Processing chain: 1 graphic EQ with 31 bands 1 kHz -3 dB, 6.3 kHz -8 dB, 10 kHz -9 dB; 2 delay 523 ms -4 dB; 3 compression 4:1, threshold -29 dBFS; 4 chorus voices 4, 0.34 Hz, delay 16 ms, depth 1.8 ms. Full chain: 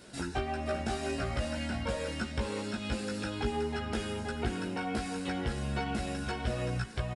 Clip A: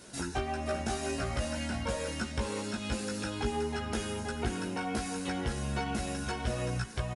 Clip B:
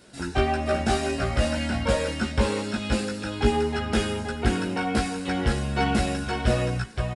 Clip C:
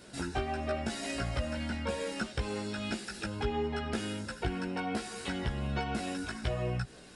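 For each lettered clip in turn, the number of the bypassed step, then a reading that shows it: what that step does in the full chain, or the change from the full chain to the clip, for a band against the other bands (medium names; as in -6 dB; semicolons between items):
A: 1, 8 kHz band +6.0 dB; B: 3, mean gain reduction 7.5 dB; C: 2, momentary loudness spread change +1 LU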